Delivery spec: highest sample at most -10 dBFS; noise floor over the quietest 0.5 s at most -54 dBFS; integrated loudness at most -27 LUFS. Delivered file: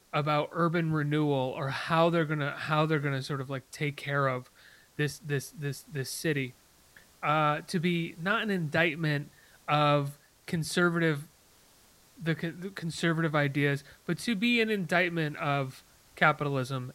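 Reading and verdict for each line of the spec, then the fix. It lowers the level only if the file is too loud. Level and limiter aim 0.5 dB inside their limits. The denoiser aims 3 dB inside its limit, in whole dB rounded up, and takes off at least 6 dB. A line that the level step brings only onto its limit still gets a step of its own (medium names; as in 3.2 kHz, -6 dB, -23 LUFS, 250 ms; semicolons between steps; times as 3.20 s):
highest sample -9.0 dBFS: fail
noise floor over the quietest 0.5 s -61 dBFS: pass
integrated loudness -29.5 LUFS: pass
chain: peak limiter -10.5 dBFS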